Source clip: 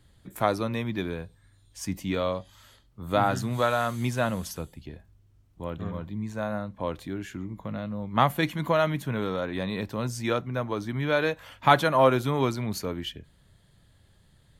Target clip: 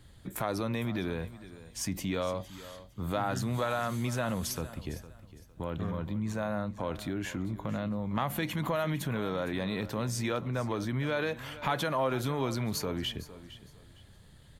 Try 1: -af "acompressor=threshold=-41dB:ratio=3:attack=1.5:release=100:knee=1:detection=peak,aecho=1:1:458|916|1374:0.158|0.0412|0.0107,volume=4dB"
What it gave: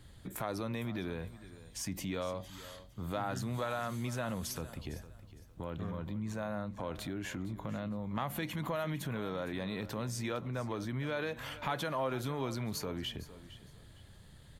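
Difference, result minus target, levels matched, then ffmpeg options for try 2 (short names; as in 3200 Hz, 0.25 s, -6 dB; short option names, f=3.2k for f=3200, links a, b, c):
compressor: peak gain reduction +5 dB
-af "acompressor=threshold=-33.5dB:ratio=3:attack=1.5:release=100:knee=1:detection=peak,aecho=1:1:458|916|1374:0.158|0.0412|0.0107,volume=4dB"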